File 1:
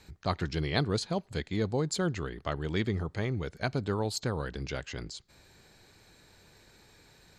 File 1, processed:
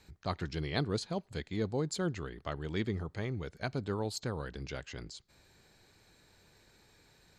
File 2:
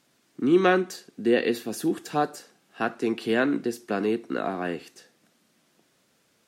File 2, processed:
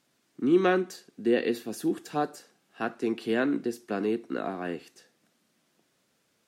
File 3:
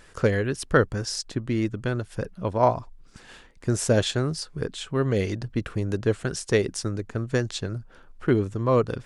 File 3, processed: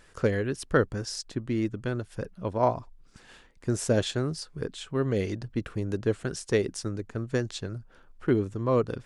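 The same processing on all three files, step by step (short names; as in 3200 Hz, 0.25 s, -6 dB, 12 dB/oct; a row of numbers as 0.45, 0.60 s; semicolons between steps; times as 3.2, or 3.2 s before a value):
dynamic EQ 300 Hz, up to +3 dB, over -30 dBFS, Q 0.87; gain -5 dB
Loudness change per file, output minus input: -4.5, -3.0, -3.5 LU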